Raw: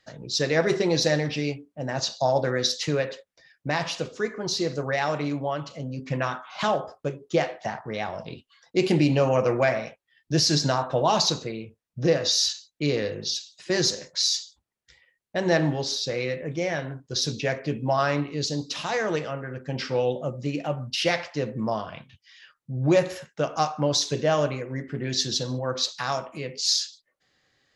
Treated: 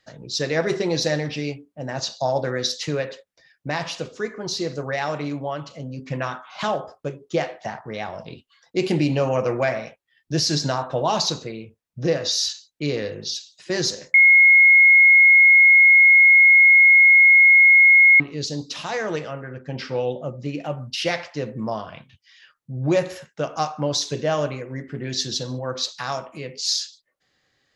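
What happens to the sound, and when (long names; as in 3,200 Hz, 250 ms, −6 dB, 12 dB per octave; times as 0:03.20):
0:14.14–0:18.20: beep over 2,160 Hz −8.5 dBFS
0:19.49–0:20.61: high-frequency loss of the air 56 metres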